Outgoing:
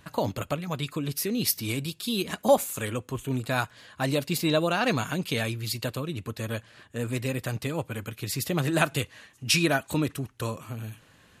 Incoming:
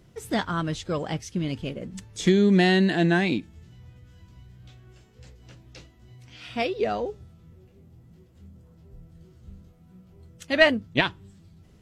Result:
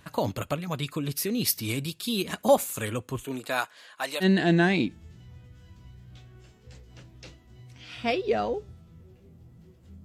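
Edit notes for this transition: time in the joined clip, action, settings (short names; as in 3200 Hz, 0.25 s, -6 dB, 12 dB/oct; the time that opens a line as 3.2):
outgoing
3.24–4.26 HPF 250 Hz -> 850 Hz
4.23 switch to incoming from 2.75 s, crossfade 0.06 s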